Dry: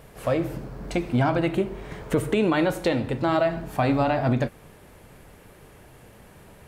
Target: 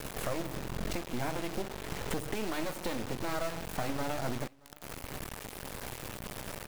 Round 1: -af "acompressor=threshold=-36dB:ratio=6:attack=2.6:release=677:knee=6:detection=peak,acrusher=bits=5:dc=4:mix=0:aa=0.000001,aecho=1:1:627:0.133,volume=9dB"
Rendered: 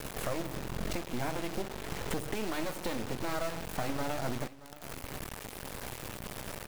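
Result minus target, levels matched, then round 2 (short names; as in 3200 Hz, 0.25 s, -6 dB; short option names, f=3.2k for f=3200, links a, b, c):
echo-to-direct +8.5 dB
-af "acompressor=threshold=-36dB:ratio=6:attack=2.6:release=677:knee=6:detection=peak,acrusher=bits=5:dc=4:mix=0:aa=0.000001,aecho=1:1:627:0.0501,volume=9dB"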